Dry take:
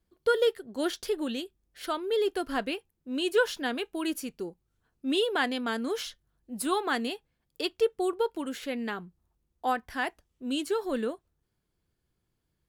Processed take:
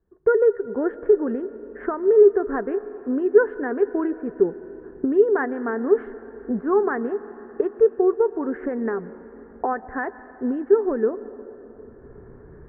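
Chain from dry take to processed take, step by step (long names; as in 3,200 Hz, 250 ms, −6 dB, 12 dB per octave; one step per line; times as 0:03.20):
adaptive Wiener filter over 9 samples
camcorder AGC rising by 26 dB per second
Chebyshev low-pass filter 1,800 Hz, order 5
parametric band 410 Hz +14 dB 0.28 octaves
convolution reverb RT60 4.2 s, pre-delay 110 ms, DRR 15 dB
level +2.5 dB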